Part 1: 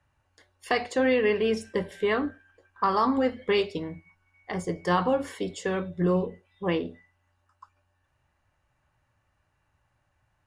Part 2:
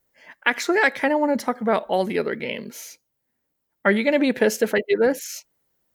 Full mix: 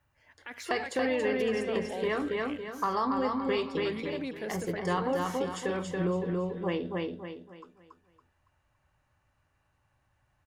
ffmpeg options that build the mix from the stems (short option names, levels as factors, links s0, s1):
-filter_complex "[0:a]volume=0.75,asplit=2[s0][s1];[s1]volume=0.668[s2];[1:a]alimiter=limit=0.224:level=0:latency=1:release=36,volume=0.168[s3];[s2]aecho=0:1:280|560|840|1120|1400:1|0.35|0.122|0.0429|0.015[s4];[s0][s3][s4]amix=inputs=3:normalize=0,acompressor=threshold=0.0398:ratio=2"